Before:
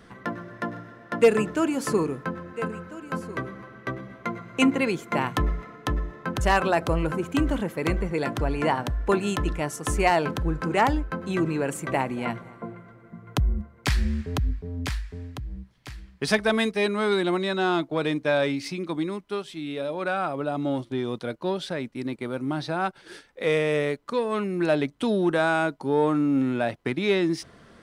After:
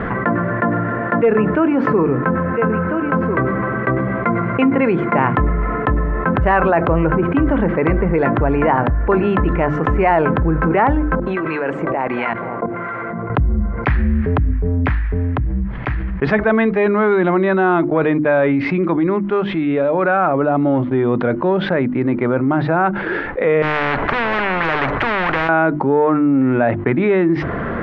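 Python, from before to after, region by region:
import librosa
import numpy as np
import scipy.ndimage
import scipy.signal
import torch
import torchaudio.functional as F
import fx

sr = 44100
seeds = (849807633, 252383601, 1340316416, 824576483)

y = fx.chain(x, sr, fx.bass_treble(bass_db=-12, treble_db=12),
    fx.level_steps(step_db=19),
    fx.harmonic_tremolo(hz=1.4, depth_pct=70, crossover_hz=1000.0), at=(11.15, 13.3))
y = fx.chain(y, sr, fx.power_curve(exponent=0.7),
    fx.spectral_comp(ratio=10.0), at=(23.62, 25.49))
y = scipy.signal.sosfilt(scipy.signal.butter(4, 2000.0, 'lowpass', fs=sr, output='sos'), y)
y = fx.hum_notches(y, sr, base_hz=50, count=7)
y = fx.env_flatten(y, sr, amount_pct=70)
y = y * librosa.db_to_amplitude(1.5)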